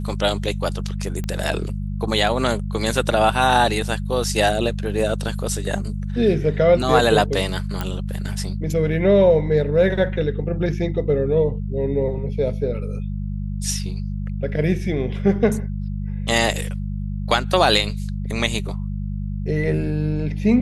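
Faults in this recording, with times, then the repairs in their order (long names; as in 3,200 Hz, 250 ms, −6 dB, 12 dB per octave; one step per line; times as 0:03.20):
mains hum 50 Hz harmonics 4 −26 dBFS
0:01.24: click −15 dBFS
0:07.81: click −11 dBFS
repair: click removal
hum removal 50 Hz, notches 4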